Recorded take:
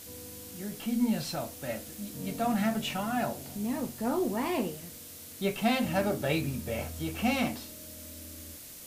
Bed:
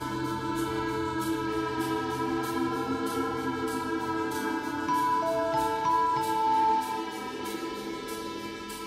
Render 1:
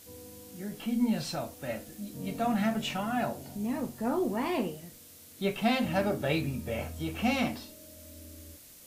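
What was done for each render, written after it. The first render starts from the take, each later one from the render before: noise print and reduce 6 dB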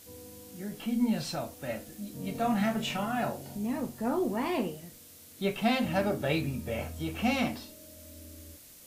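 2.32–3.59 doubler 30 ms -7 dB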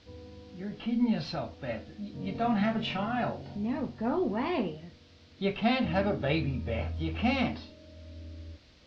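steep low-pass 4800 Hz 36 dB/oct; bell 66 Hz +10 dB 1 oct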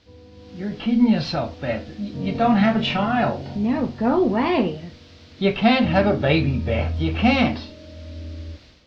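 AGC gain up to 10.5 dB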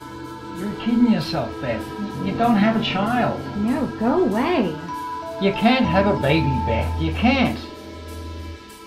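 add bed -3 dB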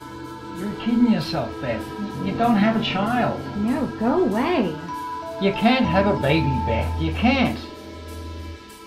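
gain -1 dB

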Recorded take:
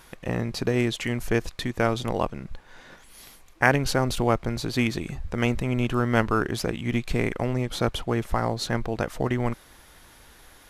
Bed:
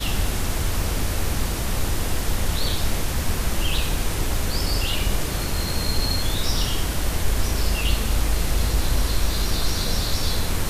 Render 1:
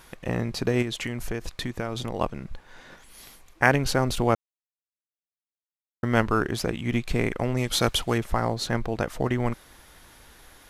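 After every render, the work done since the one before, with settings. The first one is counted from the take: 0.82–2.21 compressor, threshold -25 dBFS; 4.35–6.03 mute; 7.57–8.18 high shelf 2200 Hz +11 dB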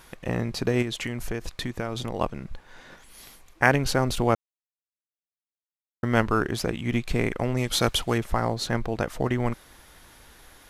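nothing audible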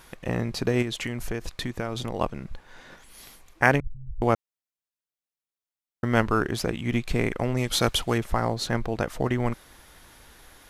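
3.8–4.22 inverse Chebyshev low-pass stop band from 520 Hz, stop band 80 dB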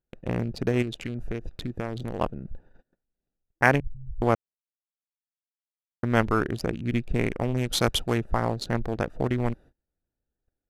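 Wiener smoothing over 41 samples; gate -46 dBFS, range -30 dB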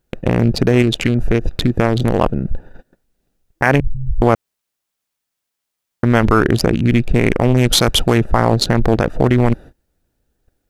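in parallel at -2 dB: negative-ratio compressor -29 dBFS, ratio -0.5; on the sum: maximiser +10.5 dB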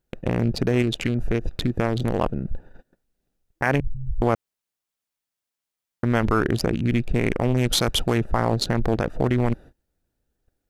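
gain -8 dB

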